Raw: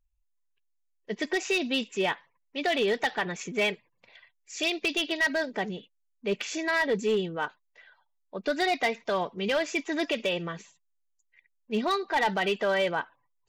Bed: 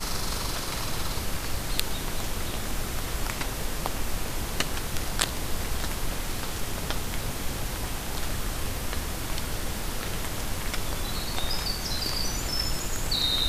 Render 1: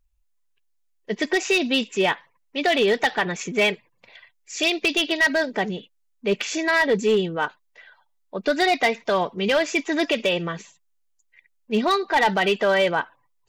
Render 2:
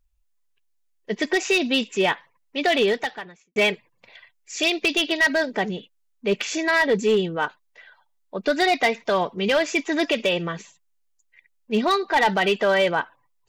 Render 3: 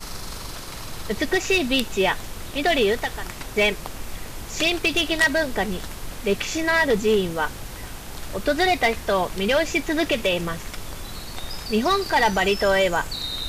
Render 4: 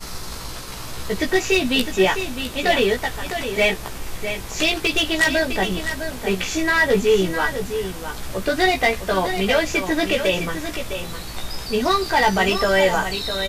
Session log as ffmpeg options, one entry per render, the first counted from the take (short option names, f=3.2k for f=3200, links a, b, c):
-af "volume=6.5dB"
-filter_complex "[0:a]asplit=2[a][b];[a]atrim=end=3.56,asetpts=PTS-STARTPTS,afade=t=out:st=2.84:d=0.72:c=qua[c];[b]atrim=start=3.56,asetpts=PTS-STARTPTS,afade=t=in:d=0.004:c=hsin[d];[c][d]concat=n=2:v=0:a=1"
-filter_complex "[1:a]volume=-4dB[a];[0:a][a]amix=inputs=2:normalize=0"
-filter_complex "[0:a]asplit=2[a][b];[b]adelay=16,volume=-3dB[c];[a][c]amix=inputs=2:normalize=0,aecho=1:1:657:0.355"